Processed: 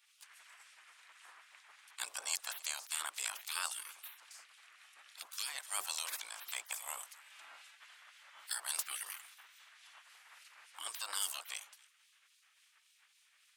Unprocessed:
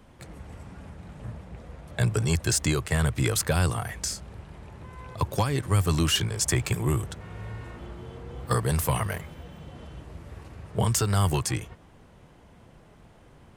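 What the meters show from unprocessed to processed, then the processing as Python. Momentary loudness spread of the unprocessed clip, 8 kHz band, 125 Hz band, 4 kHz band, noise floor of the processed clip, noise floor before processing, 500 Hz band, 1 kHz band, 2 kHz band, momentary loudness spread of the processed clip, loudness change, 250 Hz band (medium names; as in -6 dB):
20 LU, -8.5 dB, under -40 dB, -9.5 dB, -71 dBFS, -54 dBFS, -29.5 dB, -15.0 dB, -10.5 dB, 21 LU, -13.5 dB, under -40 dB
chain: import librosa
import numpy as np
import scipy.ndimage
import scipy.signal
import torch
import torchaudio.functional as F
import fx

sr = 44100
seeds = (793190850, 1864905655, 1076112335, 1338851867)

p1 = fx.dynamic_eq(x, sr, hz=1900.0, q=1.3, threshold_db=-47.0, ratio=4.0, max_db=-8)
p2 = p1 + fx.echo_single(p1, sr, ms=272, db=-23.0, dry=0)
p3 = fx.spec_gate(p2, sr, threshold_db=-25, keep='weak')
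p4 = scipy.signal.sosfilt(scipy.signal.butter(2, 1100.0, 'highpass', fs=sr, output='sos'), p3)
p5 = fx.harmonic_tremolo(p4, sr, hz=3.6, depth_pct=50, crossover_hz=2400.0)
y = p5 * librosa.db_to_amplitude(2.5)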